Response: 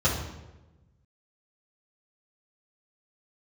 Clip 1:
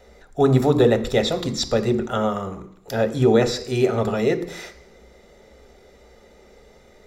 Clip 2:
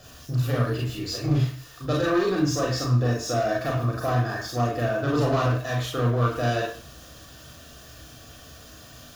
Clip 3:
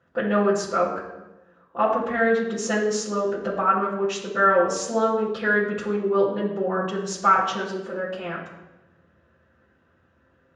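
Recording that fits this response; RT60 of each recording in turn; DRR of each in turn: 3; 0.70, 0.50, 1.1 s; 8.5, -2.0, -9.0 dB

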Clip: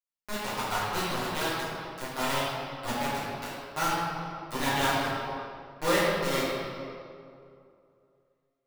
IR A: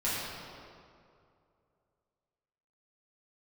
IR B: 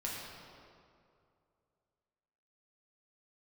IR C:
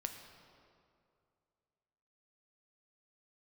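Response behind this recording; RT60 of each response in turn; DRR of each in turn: A; 2.4, 2.4, 2.4 s; -11.0, -5.0, 4.5 dB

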